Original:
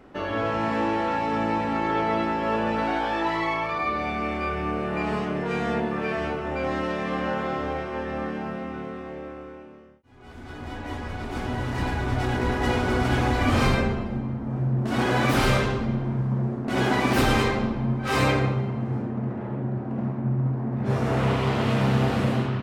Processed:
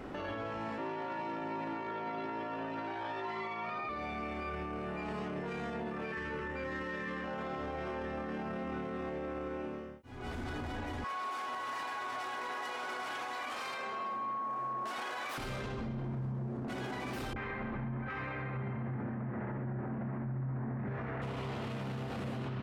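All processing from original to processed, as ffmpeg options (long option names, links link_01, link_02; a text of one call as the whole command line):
ffmpeg -i in.wav -filter_complex "[0:a]asettb=1/sr,asplit=3[link_01][link_02][link_03];[link_01]atrim=end=0.784[link_04];[link_02]atrim=start=0.78:end=3.89,asetpts=PTS-STARTPTS,afade=type=in:duration=0.004:curve=qsin,afade=type=out:start_time=3.106:duration=0.004:curve=qsin,highshelf=frequency=7800:gain=-12,bandreject=frequency=450:width=15,afreqshift=51[link_05];[link_03]atrim=start=3.886[link_06];[link_04][link_05]acrossfade=duration=0.004:curve1=hsin:curve2=qsin[link_07];[link_07][link_06]acrossfade=duration=0.004:curve1=qsin:curve2=hsin,asettb=1/sr,asplit=3[link_08][link_09][link_10];[link_08]atrim=end=6.124[link_11];[link_09]atrim=start=6.12:end=7.24,asetpts=PTS-STARTPTS,afade=type=in:duration=0.004:curve=qsin,afade=type=out:start_time=1.116:duration=0.004:curve=qsin,asuperstop=centerf=690:order=12:qfactor=3.2,equalizer=frequency=1800:width_type=o:width=0.21:gain=10[link_12];[link_10]atrim=start=7.236[link_13];[link_11][link_12]acrossfade=duration=0.004:curve1=hsin:curve2=qsin[link_14];[link_14][link_13]acrossfade=duration=0.004:curve1=qsin:curve2=hsin,asettb=1/sr,asplit=3[link_15][link_16][link_17];[link_15]atrim=end=11.044[link_18];[link_16]atrim=start=11.04:end=15.38,asetpts=PTS-STARTPTS,afade=type=in:duration=0.004:curve=qsin,afade=type=out:start_time=4.336:duration=0.004:curve=qsin,highpass=720,aeval=exprs='val(0)+0.0251*sin(2*PI*1100*n/s)':channel_layout=same[link_19];[link_17]atrim=start=15.376[link_20];[link_18][link_19]acrossfade=duration=0.004:curve1=hsin:curve2=qsin[link_21];[link_21][link_20]acrossfade=duration=0.004:curve1=qsin:curve2=hsin,asettb=1/sr,asplit=3[link_22][link_23][link_24];[link_22]atrim=end=17.334[link_25];[link_23]atrim=start=17.33:end=21.22,asetpts=PTS-STARTPTS,afade=type=in:duration=0.004:curve=qsin,afade=type=out:start_time=3.886:duration=0.004:curve=qsin,lowpass=frequency=1900:width_type=q:width=2.3,acrossover=split=430[link_26][link_27];[link_27]adelay=30[link_28];[link_26][link_28]amix=inputs=2:normalize=0,atrim=end_sample=171549[link_29];[link_24]atrim=start=21.216[link_30];[link_25][link_29]acrossfade=duration=0.004:curve1=hsin:curve2=qsin[link_31];[link_31][link_30]acrossfade=duration=0.004:curve1=qsin:curve2=hsin,acompressor=threshold=-33dB:ratio=6,alimiter=level_in=13dB:limit=-24dB:level=0:latency=1:release=30,volume=-13dB,volume=5.5dB" out.wav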